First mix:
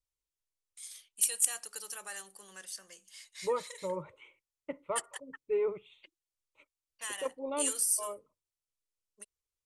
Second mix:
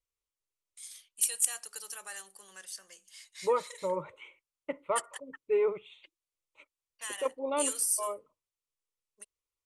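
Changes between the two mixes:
second voice +6.0 dB; master: add bass shelf 290 Hz -8.5 dB

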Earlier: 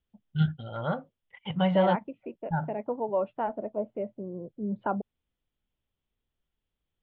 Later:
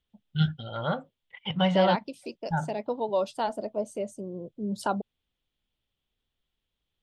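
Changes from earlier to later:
second voice: remove steep low-pass 2.5 kHz 36 dB/octave; master: remove distance through air 390 m

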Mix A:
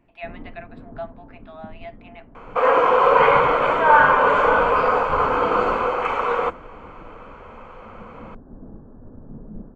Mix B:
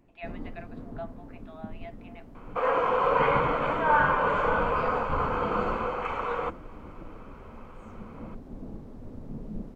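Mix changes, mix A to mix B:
speech -6.5 dB; first sound: remove brick-wall FIR low-pass 1.8 kHz; second sound -9.0 dB

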